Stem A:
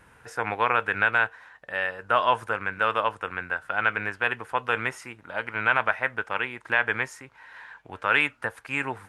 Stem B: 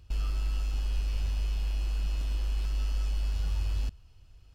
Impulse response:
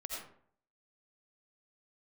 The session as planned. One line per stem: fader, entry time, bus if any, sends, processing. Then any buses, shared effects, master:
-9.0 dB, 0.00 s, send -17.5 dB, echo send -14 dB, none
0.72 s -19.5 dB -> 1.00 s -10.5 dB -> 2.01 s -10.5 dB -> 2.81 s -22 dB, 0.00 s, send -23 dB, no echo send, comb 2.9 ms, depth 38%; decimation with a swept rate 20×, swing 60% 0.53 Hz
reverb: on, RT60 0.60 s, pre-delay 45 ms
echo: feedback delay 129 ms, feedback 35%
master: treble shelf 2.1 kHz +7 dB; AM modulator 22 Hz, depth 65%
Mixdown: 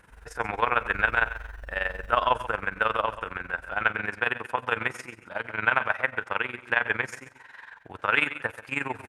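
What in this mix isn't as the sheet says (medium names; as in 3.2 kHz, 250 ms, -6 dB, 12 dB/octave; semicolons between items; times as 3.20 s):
stem A -9.0 dB -> +1.5 dB; master: missing treble shelf 2.1 kHz +7 dB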